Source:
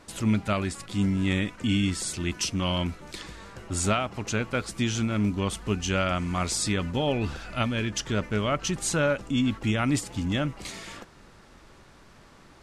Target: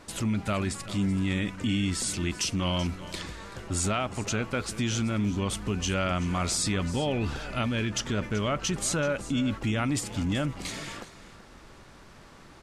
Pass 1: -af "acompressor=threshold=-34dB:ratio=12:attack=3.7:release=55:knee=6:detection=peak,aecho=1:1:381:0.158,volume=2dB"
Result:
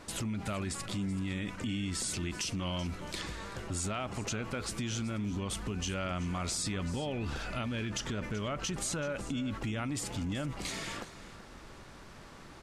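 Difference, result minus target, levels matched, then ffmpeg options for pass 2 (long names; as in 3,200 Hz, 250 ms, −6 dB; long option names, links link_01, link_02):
downward compressor: peak gain reduction +8 dB
-af "acompressor=threshold=-25dB:ratio=12:attack=3.7:release=55:knee=6:detection=peak,aecho=1:1:381:0.158,volume=2dB"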